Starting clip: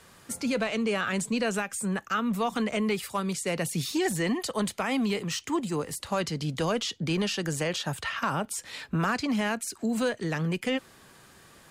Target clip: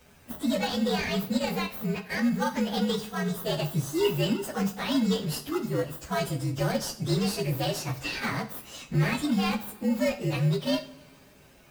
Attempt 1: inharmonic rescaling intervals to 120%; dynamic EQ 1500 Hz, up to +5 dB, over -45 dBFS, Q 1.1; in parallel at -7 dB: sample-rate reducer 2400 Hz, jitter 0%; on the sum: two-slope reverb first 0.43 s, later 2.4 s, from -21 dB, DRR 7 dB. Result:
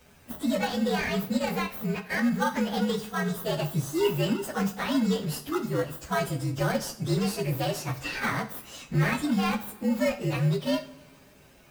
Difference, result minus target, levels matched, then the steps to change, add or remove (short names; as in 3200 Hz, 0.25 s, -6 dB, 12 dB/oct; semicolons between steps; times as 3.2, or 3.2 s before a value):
4000 Hz band -2.5 dB
change: dynamic EQ 3800 Hz, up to +5 dB, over -45 dBFS, Q 1.1